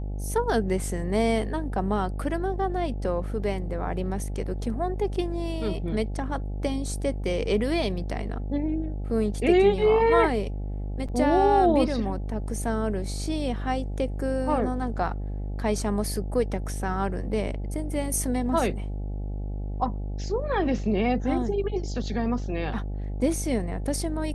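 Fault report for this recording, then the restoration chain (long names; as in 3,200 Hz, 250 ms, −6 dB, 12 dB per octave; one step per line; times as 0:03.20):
mains buzz 50 Hz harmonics 17 −31 dBFS
0:11.08–0:11.09: drop-out 6.8 ms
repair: hum removal 50 Hz, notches 17
repair the gap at 0:11.08, 6.8 ms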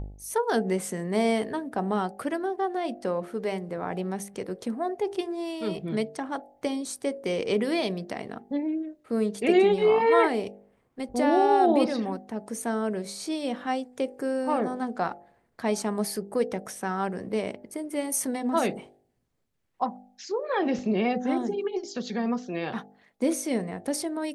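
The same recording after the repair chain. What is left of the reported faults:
none of them is left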